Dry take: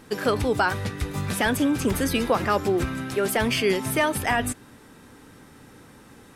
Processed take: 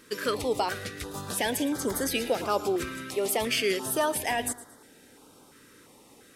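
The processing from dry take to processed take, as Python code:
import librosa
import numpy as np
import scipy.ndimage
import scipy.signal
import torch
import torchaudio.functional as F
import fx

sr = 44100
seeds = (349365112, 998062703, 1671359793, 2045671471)

y = fx.bass_treble(x, sr, bass_db=-13, treble_db=2)
y = fx.echo_feedback(y, sr, ms=113, feedback_pct=34, wet_db=-16.5)
y = fx.filter_held_notch(y, sr, hz=2.9, low_hz=770.0, high_hz=2600.0)
y = y * librosa.db_to_amplitude(-1.5)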